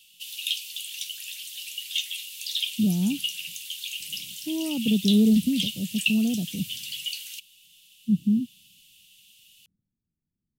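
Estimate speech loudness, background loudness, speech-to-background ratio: -25.0 LUFS, -31.0 LUFS, 6.0 dB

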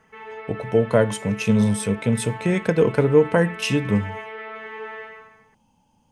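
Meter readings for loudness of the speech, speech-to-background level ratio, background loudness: -21.0 LUFS, 14.5 dB, -35.5 LUFS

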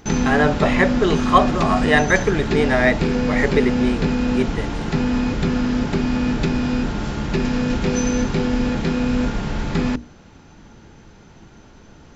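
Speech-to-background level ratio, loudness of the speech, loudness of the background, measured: 1.5 dB, -20.0 LUFS, -21.5 LUFS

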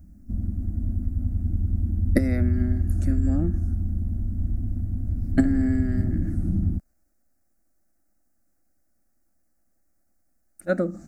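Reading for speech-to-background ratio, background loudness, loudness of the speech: 0.0 dB, -27.5 LUFS, -27.5 LUFS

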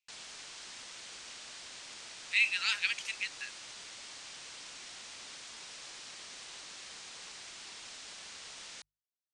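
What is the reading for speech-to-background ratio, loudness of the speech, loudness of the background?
15.0 dB, -30.5 LUFS, -45.5 LUFS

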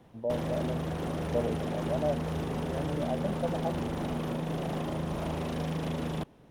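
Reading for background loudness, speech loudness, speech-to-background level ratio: -34.0 LUFS, -36.0 LUFS, -2.0 dB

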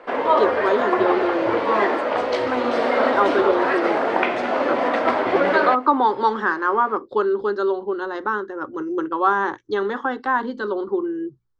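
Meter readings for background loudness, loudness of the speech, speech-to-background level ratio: -20.5 LUFS, -23.0 LUFS, -2.5 dB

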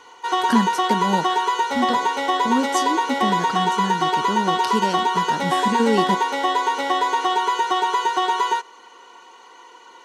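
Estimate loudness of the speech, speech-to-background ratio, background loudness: -25.5 LUFS, -4.5 dB, -21.0 LUFS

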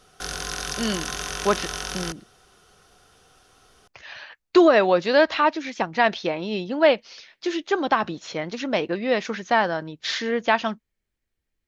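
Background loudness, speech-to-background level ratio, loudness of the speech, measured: -30.0 LUFS, 7.5 dB, -22.5 LUFS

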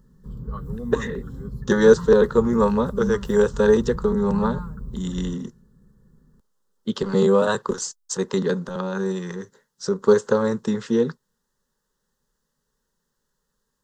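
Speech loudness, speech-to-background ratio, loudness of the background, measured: -21.5 LUFS, 12.0 dB, -33.5 LUFS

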